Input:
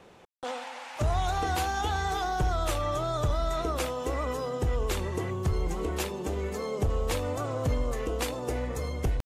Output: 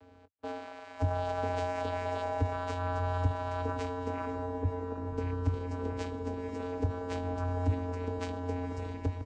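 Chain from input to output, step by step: 4.30–5.17 s: steep low-pass 1.1 kHz; vocoder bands 8, square 89.7 Hz; doubling 21 ms -13 dB; echo that smears into a reverb 516 ms, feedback 59%, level -12 dB; trim -1 dB

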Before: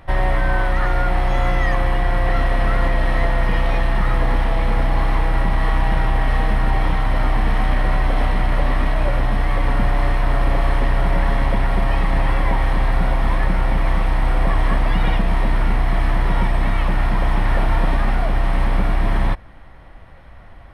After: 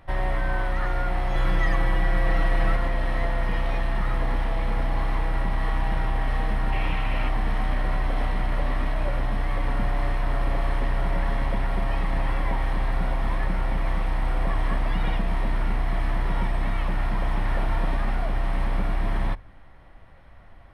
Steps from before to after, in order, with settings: 1.35–2.76 s: comb 6.2 ms, depth 92%; 6.72–7.29 s: peaking EQ 2.6 kHz +13 dB 0.42 oct; on a send: reverberation RT60 0.45 s, pre-delay 3 ms, DRR 21.5 dB; on the sum: trim -7.5 dB

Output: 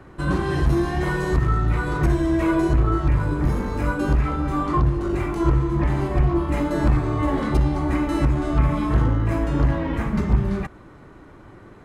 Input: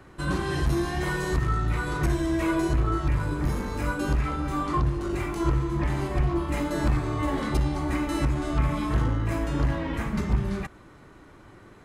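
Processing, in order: treble shelf 2.3 kHz -9 dB; trim +5.5 dB

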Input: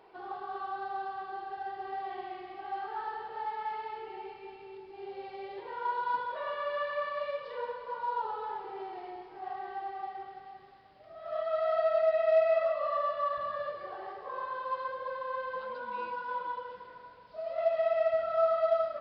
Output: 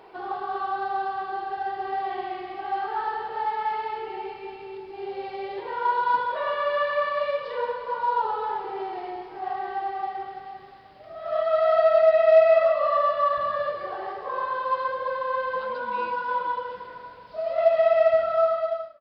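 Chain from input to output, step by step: fade out at the end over 0.87 s; trim +9 dB

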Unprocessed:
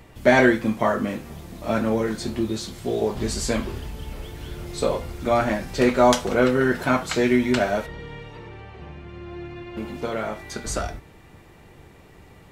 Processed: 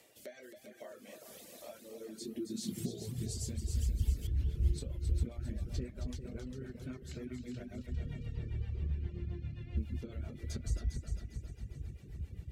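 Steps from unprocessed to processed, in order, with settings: compression 10:1, threshold -34 dBFS, peak gain reduction 22.5 dB; rotary cabinet horn 0.6 Hz, later 7.5 Hz, at 3.45 s; multi-head delay 134 ms, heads second and third, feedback 50%, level -7 dB; high-pass sweep 600 Hz -> 61 Hz, 1.78–3.76 s; treble shelf 4.3 kHz +11.5 dB, from 4.27 s -2 dB; reverb removal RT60 0.86 s; amplifier tone stack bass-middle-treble 10-0-1; trim +14.5 dB

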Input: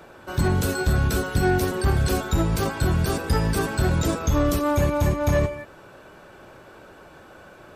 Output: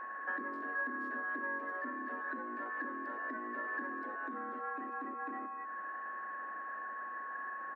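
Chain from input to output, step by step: compression 12:1, threshold -34 dBFS, peak gain reduction 17.5 dB; four-pole ladder low-pass 1.6 kHz, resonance 80%; frequency shift +190 Hz; whistle 1.1 kHz -45 dBFS; speakerphone echo 250 ms, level -18 dB; trim +2.5 dB

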